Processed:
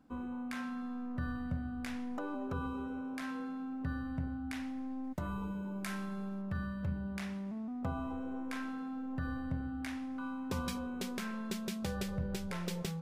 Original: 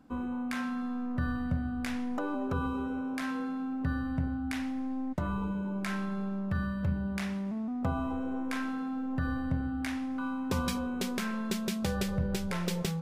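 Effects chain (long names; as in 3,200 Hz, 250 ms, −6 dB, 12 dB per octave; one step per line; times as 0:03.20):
0:05.04–0:06.42: high-shelf EQ 7,200 Hz +11.5 dB
level −6 dB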